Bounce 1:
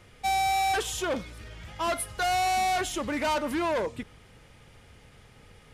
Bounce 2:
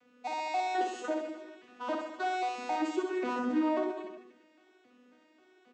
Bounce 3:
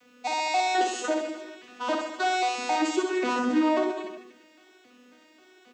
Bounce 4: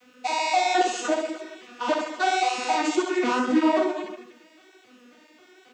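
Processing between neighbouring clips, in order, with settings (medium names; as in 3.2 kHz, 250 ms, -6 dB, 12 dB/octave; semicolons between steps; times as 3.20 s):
vocoder on a broken chord major triad, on B3, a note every 269 ms; reverse bouncing-ball echo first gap 60 ms, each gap 1.15×, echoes 5; trim -4 dB
treble shelf 2.7 kHz +10.5 dB; trim +5.5 dB
cancelling through-zero flanger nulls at 1.8 Hz, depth 7.9 ms; trim +5.5 dB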